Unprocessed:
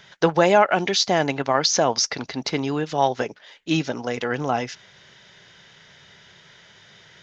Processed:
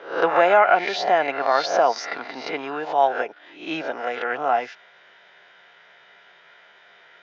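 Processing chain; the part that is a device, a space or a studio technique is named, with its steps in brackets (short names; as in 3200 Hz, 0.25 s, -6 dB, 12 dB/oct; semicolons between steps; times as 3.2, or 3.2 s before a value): spectral swells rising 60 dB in 0.49 s; tin-can telephone (BPF 490–2300 Hz; small resonant body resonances 710/1400/2400 Hz, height 7 dB)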